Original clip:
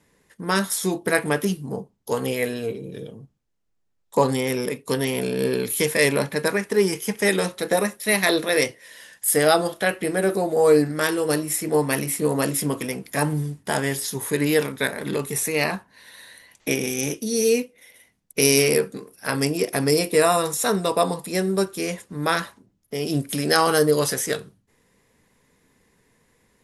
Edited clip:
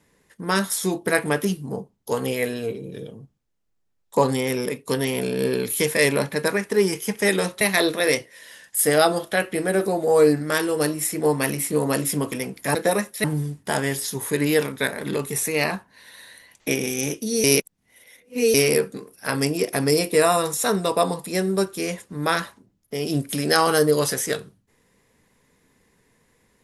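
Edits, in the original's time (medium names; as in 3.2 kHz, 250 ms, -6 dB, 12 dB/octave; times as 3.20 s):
7.61–8.10 s: move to 13.24 s
17.44–18.54 s: reverse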